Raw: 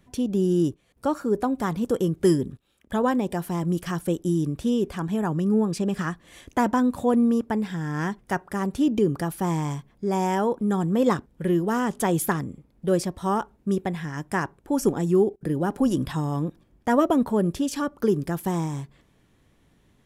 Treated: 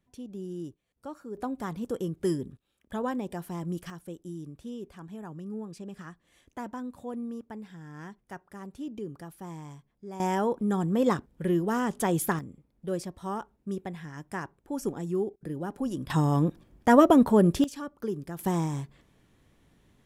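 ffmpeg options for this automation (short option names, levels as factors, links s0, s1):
-af "asetnsamples=n=441:p=0,asendcmd='1.37 volume volume -8.5dB;3.9 volume volume -16dB;10.2 volume volume -3.5dB;12.39 volume volume -9.5dB;16.1 volume volume 2.5dB;17.64 volume volume -10.5dB;18.39 volume volume -1.5dB',volume=0.158"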